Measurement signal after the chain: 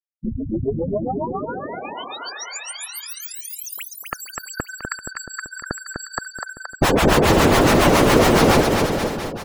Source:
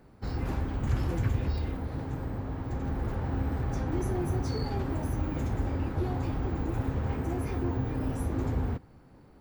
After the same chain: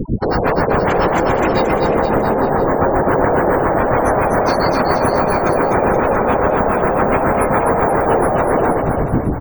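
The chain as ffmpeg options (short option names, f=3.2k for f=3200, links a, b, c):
-filter_complex "[0:a]apsyclip=19.5dB,acrossover=split=630[a][b];[a]aeval=exprs='val(0)*(1-1/2+1/2*cos(2*PI*7.2*n/s))':c=same[c];[b]aeval=exprs='val(0)*(1-1/2-1/2*cos(2*PI*7.2*n/s))':c=same[d];[c][d]amix=inputs=2:normalize=0,asplit=2[e][f];[f]acompressor=threshold=-26dB:ratio=10,volume=-2dB[g];[e][g]amix=inputs=2:normalize=0,volume=8.5dB,asoftclip=hard,volume=-8.5dB,afftfilt=real='re*gte(hypot(re,im),0.0282)':imag='im*gte(hypot(re,im),0.0282)':win_size=1024:overlap=0.75,acontrast=35,afftfilt=real='re*lt(hypot(re,im),0.501)':imag='im*lt(hypot(re,im),0.501)':win_size=1024:overlap=0.75,asoftclip=type=tanh:threshold=-13dB,tiltshelf=f=970:g=6.5,afftdn=nr=33:nf=-33,asplit=2[h][i];[i]aecho=0:1:250|475|677.5|859.8|1024:0.631|0.398|0.251|0.158|0.1[j];[h][j]amix=inputs=2:normalize=0,volume=6dB"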